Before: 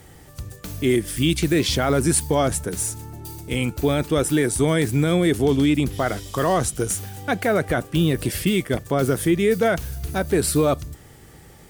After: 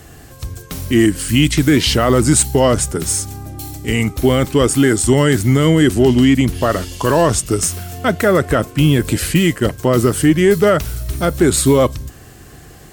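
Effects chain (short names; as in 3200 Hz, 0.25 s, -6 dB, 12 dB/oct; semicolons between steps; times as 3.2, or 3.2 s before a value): wide varispeed 0.905×; added harmonics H 4 -32 dB, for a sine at -9 dBFS; gain +7 dB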